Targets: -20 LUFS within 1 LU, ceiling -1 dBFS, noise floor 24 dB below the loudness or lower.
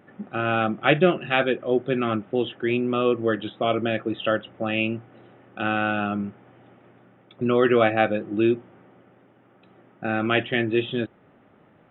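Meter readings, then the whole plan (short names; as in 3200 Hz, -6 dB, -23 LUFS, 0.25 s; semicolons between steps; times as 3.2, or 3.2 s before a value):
loudness -24.0 LUFS; peak -4.0 dBFS; loudness target -20.0 LUFS
-> gain +4 dB; limiter -1 dBFS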